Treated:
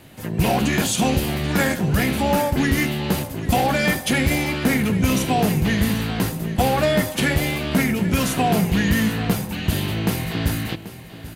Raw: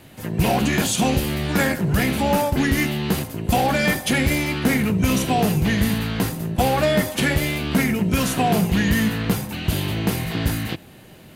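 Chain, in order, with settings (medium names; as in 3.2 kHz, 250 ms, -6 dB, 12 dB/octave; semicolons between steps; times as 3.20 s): delay 786 ms -15 dB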